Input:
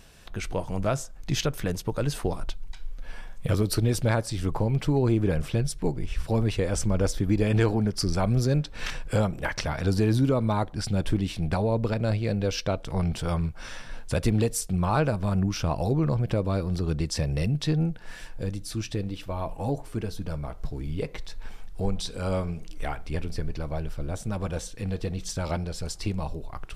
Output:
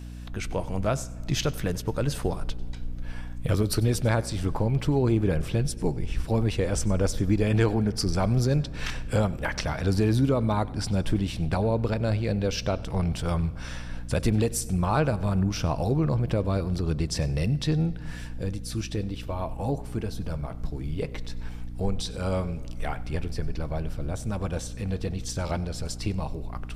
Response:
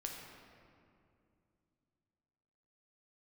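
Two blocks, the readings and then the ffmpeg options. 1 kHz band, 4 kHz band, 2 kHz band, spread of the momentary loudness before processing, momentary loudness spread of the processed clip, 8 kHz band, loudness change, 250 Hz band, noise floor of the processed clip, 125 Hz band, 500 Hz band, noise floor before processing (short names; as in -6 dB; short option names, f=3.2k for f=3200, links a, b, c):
0.0 dB, 0.0 dB, 0.0 dB, 12 LU, 11 LU, 0.0 dB, 0.0 dB, 0.0 dB, -37 dBFS, +0.5 dB, 0.0 dB, -42 dBFS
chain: -filter_complex "[0:a]aeval=exprs='val(0)+0.0141*(sin(2*PI*60*n/s)+sin(2*PI*2*60*n/s)/2+sin(2*PI*3*60*n/s)/3+sin(2*PI*4*60*n/s)/4+sin(2*PI*5*60*n/s)/5)':c=same,asplit=2[a][b];[1:a]atrim=start_sample=2205,adelay=95[c];[b][c]afir=irnorm=-1:irlink=0,volume=-17dB[d];[a][d]amix=inputs=2:normalize=0"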